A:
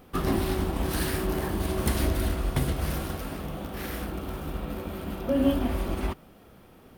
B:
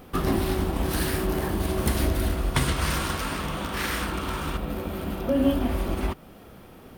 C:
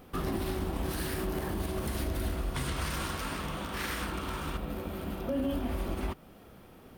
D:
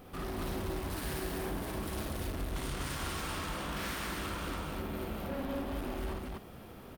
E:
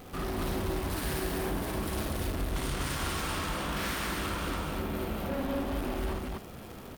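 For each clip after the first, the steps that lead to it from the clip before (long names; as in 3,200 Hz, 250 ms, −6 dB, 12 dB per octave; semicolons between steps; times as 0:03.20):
gain on a spectral selection 0:02.55–0:04.57, 870–9,700 Hz +8 dB; in parallel at −0.5 dB: downward compressor, threshold −36 dBFS, peak gain reduction 17 dB
brickwall limiter −17.5 dBFS, peak gain reduction 7 dB; level −6 dB
soft clipping −38 dBFS, distortion −8 dB; on a send: loudspeakers that aren't time-aligned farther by 19 metres −2 dB, 84 metres −1 dB
surface crackle 310 per second −45 dBFS; level +4.5 dB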